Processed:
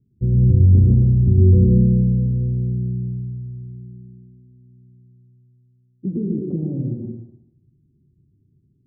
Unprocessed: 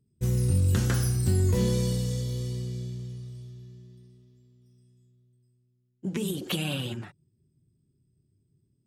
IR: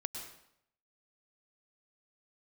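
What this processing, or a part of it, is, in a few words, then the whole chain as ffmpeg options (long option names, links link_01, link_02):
next room: -filter_complex "[0:a]lowpass=frequency=380:width=0.5412,lowpass=frequency=380:width=1.3066[link_01];[1:a]atrim=start_sample=2205[link_02];[link_01][link_02]afir=irnorm=-1:irlink=0,volume=9dB"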